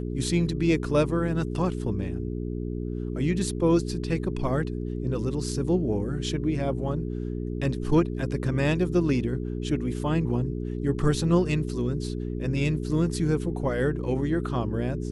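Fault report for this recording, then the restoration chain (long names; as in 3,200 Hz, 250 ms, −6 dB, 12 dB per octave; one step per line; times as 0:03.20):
mains hum 60 Hz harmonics 7 −31 dBFS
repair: hum removal 60 Hz, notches 7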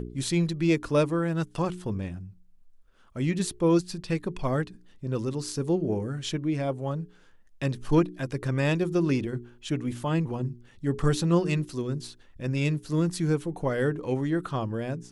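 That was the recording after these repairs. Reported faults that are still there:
none of them is left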